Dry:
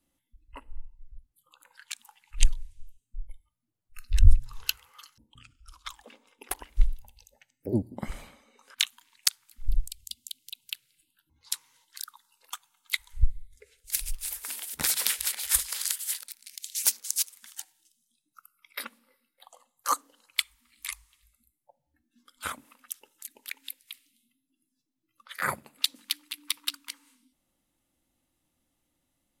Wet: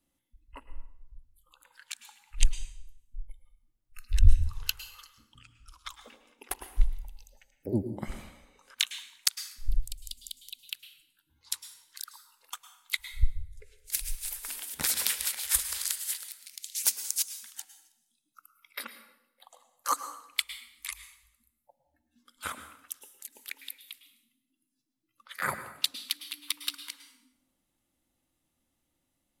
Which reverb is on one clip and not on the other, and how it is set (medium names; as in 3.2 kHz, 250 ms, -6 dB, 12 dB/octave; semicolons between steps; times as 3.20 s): plate-style reverb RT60 0.76 s, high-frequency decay 0.8×, pre-delay 95 ms, DRR 10.5 dB; trim -2 dB